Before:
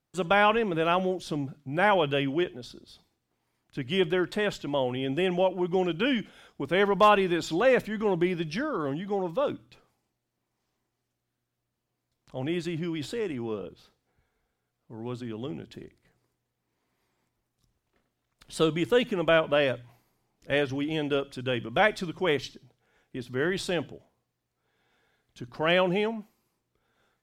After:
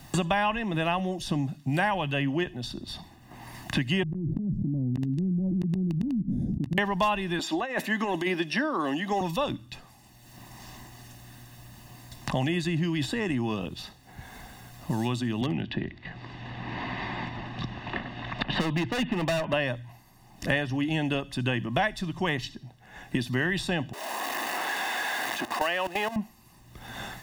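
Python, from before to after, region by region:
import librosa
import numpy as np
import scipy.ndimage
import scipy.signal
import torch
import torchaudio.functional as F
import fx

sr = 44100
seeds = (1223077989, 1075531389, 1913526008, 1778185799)

y = fx.chain(x, sr, fx.cheby2_lowpass(hz=1100.0, order=4, stop_db=70),
    fx.gate_flip(shuts_db=-29.0, range_db=-41),
    fx.env_flatten(amount_pct=100), at=(4.03, 6.78))
y = fx.chain(y, sr, fx.highpass(hz=270.0, slope=24),
    fx.over_compress(threshold_db=-28.0, ratio=-1.0), at=(7.39, 9.21))
y = fx.chain(y, sr, fx.lowpass(hz=3400.0, slope=24),
    fx.clip_hard(threshold_db=-26.5),
    fx.band_squash(depth_pct=40), at=(15.41, 19.53))
y = fx.chain(y, sr, fx.zero_step(step_db=-32.0),
    fx.bessel_highpass(hz=480.0, order=6),
    fx.level_steps(step_db=15), at=(23.93, 26.16))
y = fx.peak_eq(y, sr, hz=940.0, db=-2.5, octaves=0.38)
y = y + 0.72 * np.pad(y, (int(1.1 * sr / 1000.0), 0))[:len(y)]
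y = fx.band_squash(y, sr, depth_pct=100)
y = y * 10.0 ** (2.0 / 20.0)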